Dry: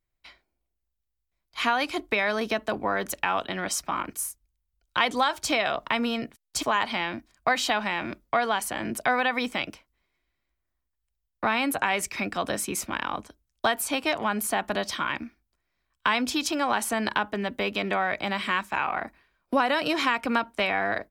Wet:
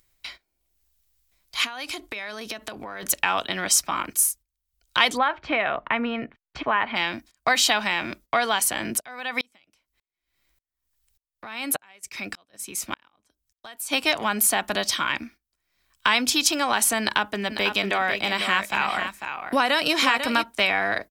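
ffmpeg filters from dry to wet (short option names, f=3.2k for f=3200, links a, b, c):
-filter_complex "[0:a]asettb=1/sr,asplit=3[a][b][c];[a]atrim=end=1.644[d];[b]atrim=start=1.64:end=3.03,asetpts=PTS-STARTPTS,afade=t=in:d=0.004:c=qsin,afade=t=out:st=1.386:d=0.004:c=qsin,acompressor=threshold=-33dB:ratio=10:attack=3.2:release=140:knee=1:detection=peak[e];[c]atrim=start=3.026[f];[d][e]acrossfade=d=0.004:c1=hsin:c2=qsin[g];[g][f]acrossfade=d=0.004:c1=qsin:c2=hsin,asplit=3[h][i][j];[h]afade=t=out:st=5.16:d=0.02[k];[i]lowpass=f=2.3k:w=0.5412,lowpass=f=2.3k:w=1.3066,afade=t=in:st=5.16:d=0.02,afade=t=out:st=6.95:d=0.02[l];[j]afade=t=in:st=6.95:d=0.02[m];[k][l][m]amix=inputs=3:normalize=0,asplit=3[n][o][p];[n]afade=t=out:st=8.99:d=0.02[q];[o]aeval=exprs='val(0)*pow(10,-38*if(lt(mod(-1.7*n/s,1),2*abs(-1.7)/1000),1-mod(-1.7*n/s,1)/(2*abs(-1.7)/1000),(mod(-1.7*n/s,1)-2*abs(-1.7)/1000)/(1-2*abs(-1.7)/1000))/20)':c=same,afade=t=in:st=8.99:d=0.02,afade=t=out:st=13.91:d=0.02[r];[p]afade=t=in:st=13.91:d=0.02[s];[q][r][s]amix=inputs=3:normalize=0,asplit=3[t][u][v];[t]afade=t=out:st=17.49:d=0.02[w];[u]aecho=1:1:496:0.398,afade=t=in:st=17.49:d=0.02,afade=t=out:st=20.42:d=0.02[x];[v]afade=t=in:st=20.42:d=0.02[y];[w][x][y]amix=inputs=3:normalize=0,acompressor=mode=upward:threshold=-36dB:ratio=2.5,agate=range=-15dB:threshold=-48dB:ratio=16:detection=peak,highshelf=f=2.4k:g=11.5"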